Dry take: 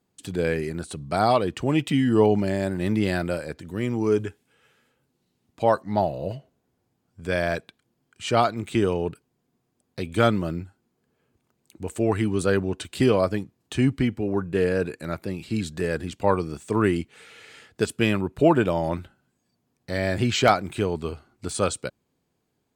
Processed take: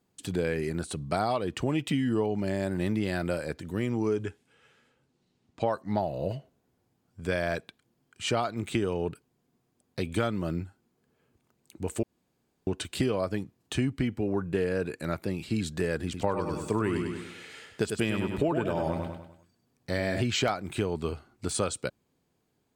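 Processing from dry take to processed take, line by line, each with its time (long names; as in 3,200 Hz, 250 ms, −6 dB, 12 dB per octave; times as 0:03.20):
0:03.90–0:05.69: low-pass filter 11,000 Hz → 6,400 Hz
0:12.03–0:12.67: fill with room tone
0:16.04–0:20.21: repeating echo 99 ms, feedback 43%, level −7 dB
whole clip: downward compressor 6 to 1, threshold −24 dBFS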